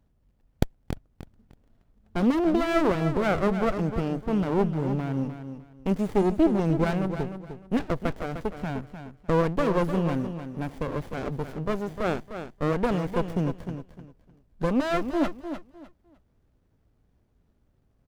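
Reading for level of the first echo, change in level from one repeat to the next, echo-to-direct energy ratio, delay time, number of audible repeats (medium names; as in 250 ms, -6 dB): -9.5 dB, -13.0 dB, -9.5 dB, 303 ms, 2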